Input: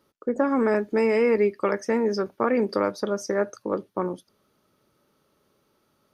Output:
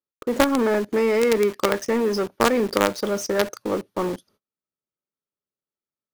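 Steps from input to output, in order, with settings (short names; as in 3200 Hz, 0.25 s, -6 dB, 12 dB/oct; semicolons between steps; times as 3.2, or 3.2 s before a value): gate -57 dBFS, range -31 dB; in parallel at -5 dB: companded quantiser 2-bit; on the sum: gain -1 dB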